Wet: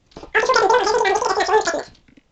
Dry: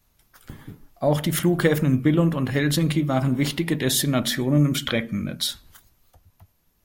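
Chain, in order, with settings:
delay with a band-pass on its return 63 ms, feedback 46%, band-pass 650 Hz, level −5 dB
change of speed 2.95×
level +4 dB
mu-law 128 kbit/s 16,000 Hz

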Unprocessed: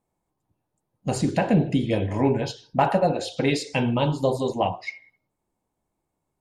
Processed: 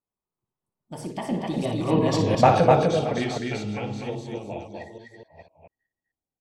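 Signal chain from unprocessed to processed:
delay that plays each chunk backwards 387 ms, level −6 dB
source passing by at 0:02.32, 50 m/s, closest 11 metres
loudspeakers that aren't time-aligned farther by 20 metres −9 dB, 86 metres −3 dB
level +5 dB

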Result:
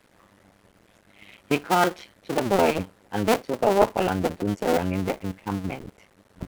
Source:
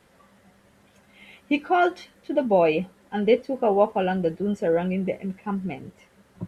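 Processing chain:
sub-harmonics by changed cycles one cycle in 2, muted
level +2.5 dB

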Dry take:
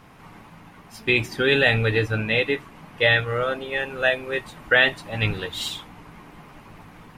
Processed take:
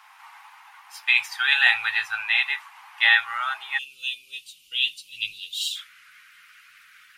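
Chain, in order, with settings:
elliptic high-pass filter 830 Hz, stop band 40 dB, from 0:03.77 2,800 Hz, from 0:05.75 1,400 Hz
level +2.5 dB

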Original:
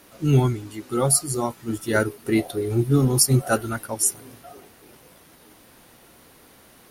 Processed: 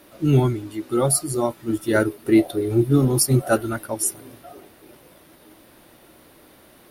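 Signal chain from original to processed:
parametric band 6,700 Hz −5.5 dB 0.77 octaves
hollow resonant body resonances 330/590/3,600 Hz, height 7 dB

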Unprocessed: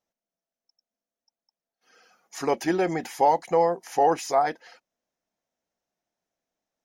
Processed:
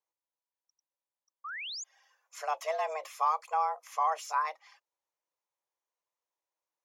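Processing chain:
pitch vibrato 1.2 Hz 14 cents
sound drawn into the spectrogram rise, 0:01.44–0:01.84, 800–7,000 Hz −31 dBFS
frequency shifter +310 Hz
level −8.5 dB

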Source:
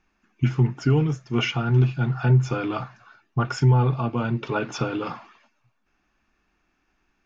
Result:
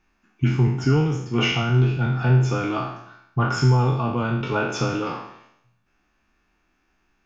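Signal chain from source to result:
peak hold with a decay on every bin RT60 0.74 s

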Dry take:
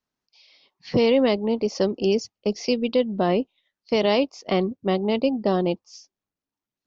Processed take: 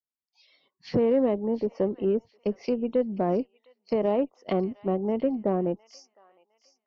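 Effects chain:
treble cut that deepens with the level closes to 980 Hz, closed at −20.5 dBFS
noise reduction from a noise print of the clip's start 18 dB
delay with a high-pass on its return 709 ms, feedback 31%, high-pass 1,600 Hz, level −13.5 dB
harmonic generator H 6 −31 dB, 8 −41 dB, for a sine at −9.5 dBFS
level −3.5 dB

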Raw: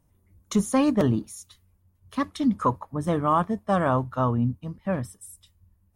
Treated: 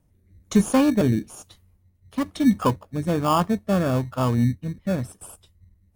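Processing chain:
rotating-speaker cabinet horn 1.1 Hz
in parallel at −7 dB: sample-rate reduction 2,000 Hz, jitter 0%
on the sum: level +2 dB

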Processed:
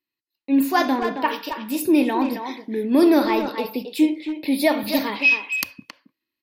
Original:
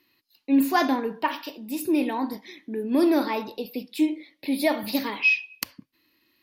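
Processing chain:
noise gate with hold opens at −44 dBFS
speech leveller within 4 dB 2 s
far-end echo of a speakerphone 270 ms, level −7 dB
level +3.5 dB

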